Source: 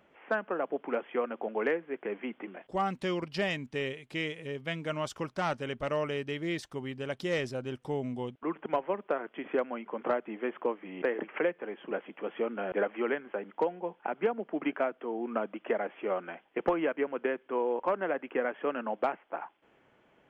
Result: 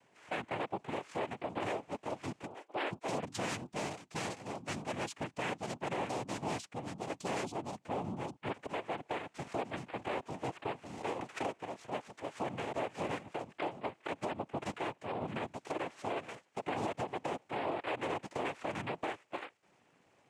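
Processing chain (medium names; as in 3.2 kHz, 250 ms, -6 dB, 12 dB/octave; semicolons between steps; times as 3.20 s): 2.46–3.08 s: formants replaced by sine waves; noise-vocoded speech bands 4; peak limiter -23 dBFS, peak gain reduction 10 dB; trim -3.5 dB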